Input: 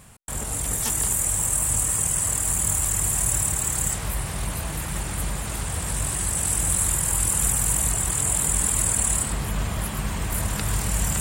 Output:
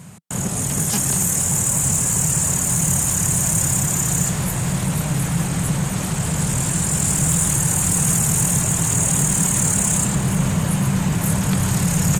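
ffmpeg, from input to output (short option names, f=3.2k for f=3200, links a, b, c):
-filter_complex "[0:a]highpass=110,equalizer=f=180:w=1.3:g=14,asoftclip=type=tanh:threshold=-14dB,asplit=8[a][b][c][d][e][f][g][h];[b]adelay=429,afreqshift=-36,volume=-15dB[i];[c]adelay=858,afreqshift=-72,volume=-18.7dB[j];[d]adelay=1287,afreqshift=-108,volume=-22.5dB[k];[e]adelay=1716,afreqshift=-144,volume=-26.2dB[l];[f]adelay=2145,afreqshift=-180,volume=-30dB[m];[g]adelay=2574,afreqshift=-216,volume=-33.7dB[n];[h]adelay=3003,afreqshift=-252,volume=-37.5dB[o];[a][i][j][k][l][m][n][o]amix=inputs=8:normalize=0,asetrate=40517,aresample=44100,volume=4.5dB"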